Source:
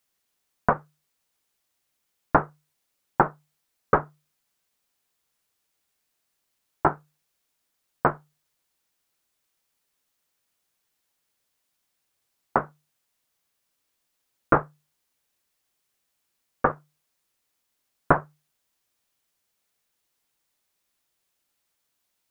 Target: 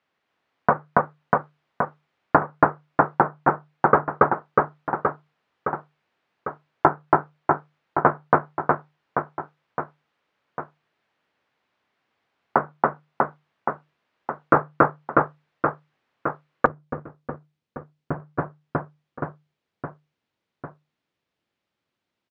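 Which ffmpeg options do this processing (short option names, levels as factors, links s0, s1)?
-af "highpass=100,lowpass=3000,aemphasis=mode=reproduction:type=50fm,aecho=1:1:280|644|1117|1732|2532:0.631|0.398|0.251|0.158|0.1,alimiter=limit=0.299:level=0:latency=1:release=348,asetnsamples=n=441:p=0,asendcmd='16.66 equalizer g -14.5;18.2 equalizer g -8.5',equalizer=f=1200:w=0.37:g=2.5,volume=2.24"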